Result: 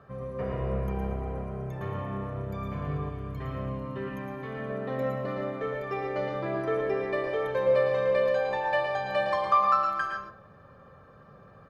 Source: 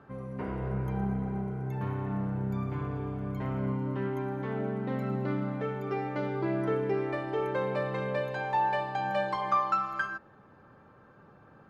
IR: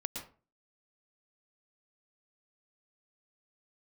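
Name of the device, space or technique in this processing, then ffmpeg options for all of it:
microphone above a desk: -filter_complex "[0:a]aecho=1:1:1.7:0.6[a];[1:a]atrim=start_sample=2205[b];[a][b]afir=irnorm=-1:irlink=0,asettb=1/sr,asplit=3[c][d][e];[c]atrim=end=3.094[f];[d]atrim=start=3.09:end=4.7,asetpts=PTS-STARTPTS,afade=t=in:d=0.004:c=qsin,afade=t=out:st=1.606:d=0.004:c=qsin,equalizer=f=630:t=o:w=1.4:g=-6[g];[e]atrim=start=4.696[h];[f][g]acrossfade=d=0.004:c1=hsin:c2=qsin[i];[i][h]acrossfade=d=0.004:c1=qsin:c2=hsin,volume=1.5dB"

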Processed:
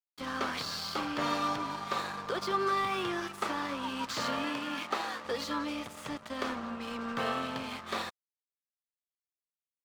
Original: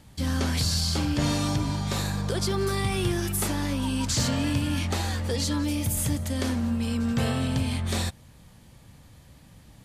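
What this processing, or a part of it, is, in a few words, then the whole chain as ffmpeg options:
pocket radio on a weak battery: -filter_complex "[0:a]highpass=370,lowpass=3.6k,aeval=exprs='sgn(val(0))*max(abs(val(0))-0.00596,0)':c=same,equalizer=f=1.2k:t=o:w=0.49:g=10,asettb=1/sr,asplit=3[a][b][c];[a]atrim=end=4.444[d];[b]atrim=start=4.44:end=5.25,asetpts=PTS-STARTPTS,afade=t=in:d=0.004:c=qsin,afade=t=out:st=0.806:d=0.004:c=qsin,highpass=170[e];[c]atrim=start=5.246[f];[d][e]acrossfade=d=0.004:c1=hsin:c2=qsin[g];[g][f]acrossfade=d=0.004:c1=qsin:c2=hsin,volume=-1dB"

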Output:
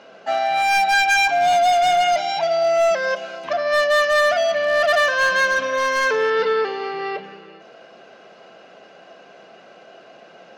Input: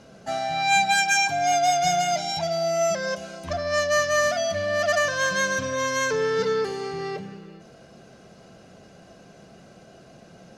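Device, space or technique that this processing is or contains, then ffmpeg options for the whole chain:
megaphone: -filter_complex "[0:a]highpass=490,lowpass=3.2k,equalizer=f=2.8k:t=o:w=0.24:g=4,asoftclip=type=hard:threshold=-21dB,asettb=1/sr,asplit=3[a][b][c];[a]atrim=end=6.304[d];[b]atrim=start=6.3:end=7.24,asetpts=PTS-STARTPTS,afade=t=in:d=0.004:c=qsin,afade=t=out:st=0.936:d=0.004:c=qsin,lowpass=f=5.2k:w=0.5412,lowpass=f=5.2k:w=1.3066[e];[c]atrim=start=7.236[f];[d][e]acrossfade=d=0.004:c1=hsin:c2=qsin[g];[g][f]acrossfade=d=0.004:c1=qsin:c2=hsin,volume=8dB"

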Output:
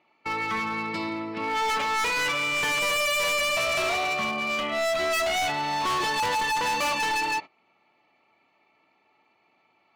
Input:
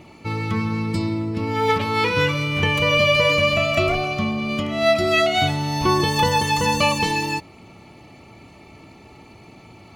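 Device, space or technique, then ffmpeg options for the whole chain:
walkie-talkie: -af "highpass=500,lowpass=2.9k,equalizer=f=440:w=0.96:g=-5.5,asoftclip=type=hard:threshold=-29dB,agate=range=-19dB:threshold=-40dB:ratio=16:detection=peak,volume=5dB"

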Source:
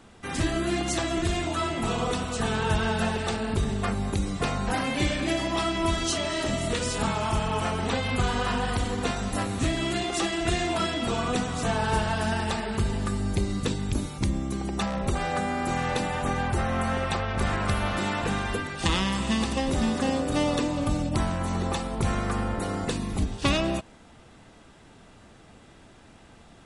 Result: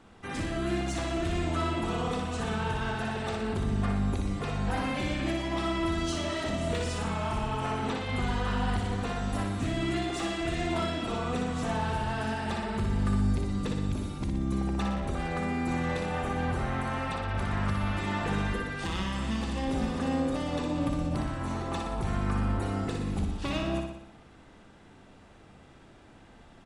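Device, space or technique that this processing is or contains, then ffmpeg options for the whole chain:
limiter into clipper: -af "alimiter=limit=-18dB:level=0:latency=1:release=279,asoftclip=type=hard:threshold=-22dB,highshelf=f=4.4k:g=-8.5,aecho=1:1:60|120|180|240|300|360|420|480:0.562|0.326|0.189|0.11|0.0636|0.0369|0.0214|0.0124,bandreject=f=59:t=h:w=4,bandreject=f=118:t=h:w=4,bandreject=f=177:t=h:w=4,bandreject=f=236:t=h:w=4,bandreject=f=295:t=h:w=4,bandreject=f=354:t=h:w=4,bandreject=f=413:t=h:w=4,bandreject=f=472:t=h:w=4,bandreject=f=531:t=h:w=4,bandreject=f=590:t=h:w=4,bandreject=f=649:t=h:w=4,bandreject=f=708:t=h:w=4,volume=-3dB"

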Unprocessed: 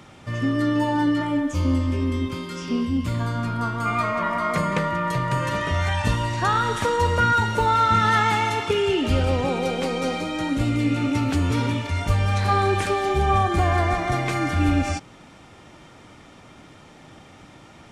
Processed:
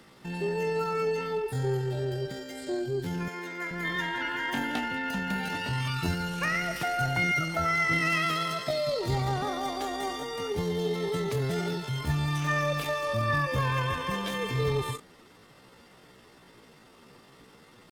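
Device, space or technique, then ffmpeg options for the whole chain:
chipmunk voice: -filter_complex "[0:a]asettb=1/sr,asplit=3[a][b][c];[a]atrim=end=3.284[d];[b]atrim=start=3.28:end=3.72,asetpts=PTS-STARTPTS,afade=t=in:d=0.004:c=qsin,afade=t=out:st=0.436:d=0.004:c=qsin,highpass=260[e];[c]atrim=start=3.716[f];[d][e]acrossfade=d=0.004:c1=hsin:c2=qsin[g];[g][f]acrossfade=d=0.004:c1=qsin:c2=hsin,asetrate=66075,aresample=44100,atempo=0.66742,volume=-7.5dB"

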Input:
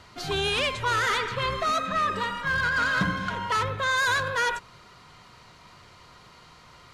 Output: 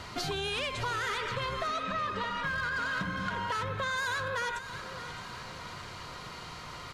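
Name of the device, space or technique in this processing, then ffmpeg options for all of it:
serial compression, peaks first: -filter_complex "[0:a]asettb=1/sr,asplit=3[a][b][c];[a]atrim=end=1.674[d];[b]atrim=start=1.67:end=2.44,asetpts=PTS-STARTPTS,afade=t=in:d=0.004:c=qsin,afade=t=out:st=0.766:d=0.004:c=qsin,lowpass=f=6k:w=0.5412,lowpass=f=6k:w=1.3066[e];[c]atrim=start=2.436[f];[d][e]acrossfade=d=0.004:c1=hsin:c2=qsin[g];[g][f]acrossfade=d=0.004:c1=qsin:c2=hsin,acompressor=threshold=-34dB:ratio=6,acompressor=threshold=-42dB:ratio=2,aecho=1:1:618|1236|1854|2472|3090:0.237|0.116|0.0569|0.0279|0.0137,volume=7.5dB"

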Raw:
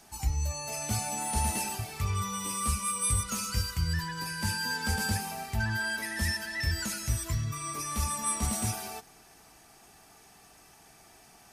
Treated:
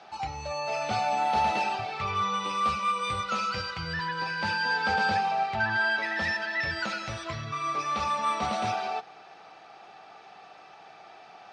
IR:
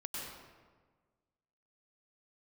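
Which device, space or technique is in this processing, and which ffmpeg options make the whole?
kitchen radio: -af "highpass=200,equalizer=f=250:t=q:w=4:g=-8,equalizer=f=540:t=q:w=4:g=8,equalizer=f=770:t=q:w=4:g=9,equalizer=f=1.3k:t=q:w=4:g=8,equalizer=f=2.5k:t=q:w=4:g=4,equalizer=f=3.8k:t=q:w=4:g=4,lowpass=f=4.3k:w=0.5412,lowpass=f=4.3k:w=1.3066,volume=3.5dB"

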